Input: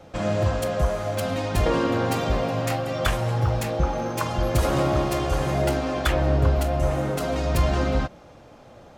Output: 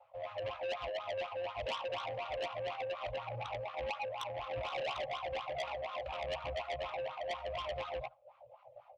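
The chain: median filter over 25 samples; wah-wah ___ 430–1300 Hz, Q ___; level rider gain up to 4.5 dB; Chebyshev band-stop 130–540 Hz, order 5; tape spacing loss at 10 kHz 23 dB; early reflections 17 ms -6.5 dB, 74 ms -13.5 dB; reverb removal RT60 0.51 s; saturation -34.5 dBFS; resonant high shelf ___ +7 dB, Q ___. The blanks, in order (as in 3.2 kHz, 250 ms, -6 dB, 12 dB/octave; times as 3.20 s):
4.1 Hz, 4, 2 kHz, 3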